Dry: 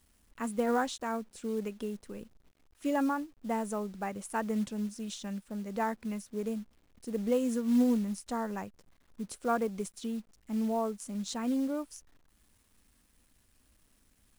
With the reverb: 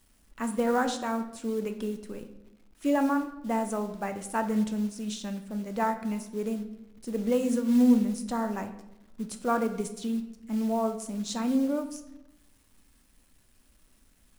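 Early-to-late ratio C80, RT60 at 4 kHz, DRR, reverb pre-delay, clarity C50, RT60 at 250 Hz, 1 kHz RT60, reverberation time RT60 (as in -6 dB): 13.0 dB, 0.60 s, 6.5 dB, 3 ms, 10.5 dB, 1.2 s, 0.80 s, 0.85 s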